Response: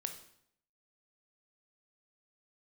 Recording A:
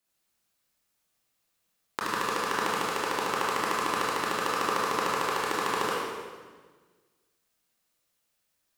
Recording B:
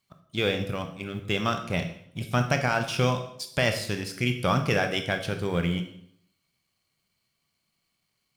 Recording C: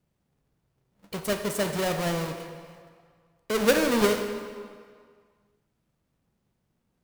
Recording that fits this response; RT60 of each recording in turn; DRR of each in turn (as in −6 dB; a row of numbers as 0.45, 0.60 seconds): B; 1.5, 0.70, 1.9 seconds; −5.5, 6.0, 5.5 decibels